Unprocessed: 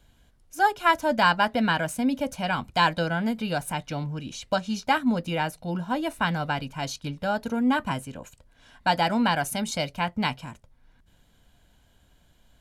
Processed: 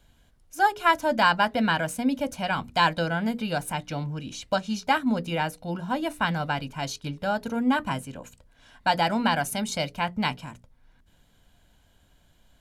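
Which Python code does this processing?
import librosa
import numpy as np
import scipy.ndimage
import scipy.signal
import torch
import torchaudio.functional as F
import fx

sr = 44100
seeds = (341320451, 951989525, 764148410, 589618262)

y = fx.hum_notches(x, sr, base_hz=60, count=8)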